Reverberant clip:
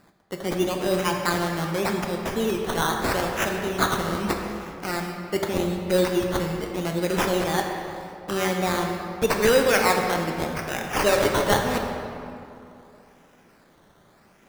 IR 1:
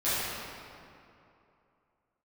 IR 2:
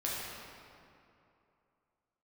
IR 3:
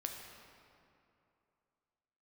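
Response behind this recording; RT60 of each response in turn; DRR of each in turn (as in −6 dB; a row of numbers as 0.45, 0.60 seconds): 3; 2.7, 2.7, 2.7 seconds; −15.0, −6.5, 2.0 decibels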